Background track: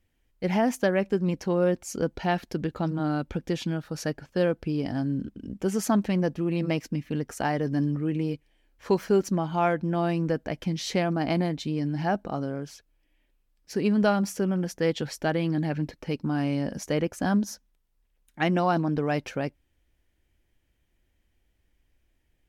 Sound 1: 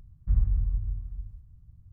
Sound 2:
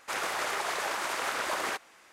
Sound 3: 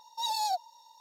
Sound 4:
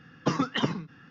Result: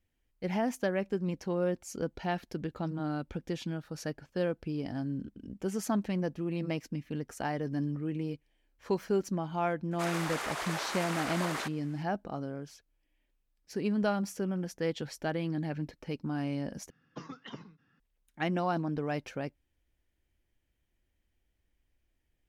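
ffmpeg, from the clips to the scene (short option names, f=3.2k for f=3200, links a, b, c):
-filter_complex "[0:a]volume=-7dB,asplit=2[a][b];[a]atrim=end=16.904[c];[4:a]atrim=end=1.1,asetpts=PTS-STARTPTS,volume=-18dB[d];[b]atrim=start=17.996[e];[2:a]atrim=end=2.12,asetpts=PTS-STARTPTS,volume=-4.5dB,afade=t=in:d=0.004:c=hsin,afade=t=out:st=2.116:d=0.004:c=hsin,adelay=9910[f];[c][d]acrossfade=d=0.004:c1=hsin:c2=hsin[g];[g][e]acrossfade=d=0.004:c1=hsin:c2=hsin[h];[h][f]amix=inputs=2:normalize=0"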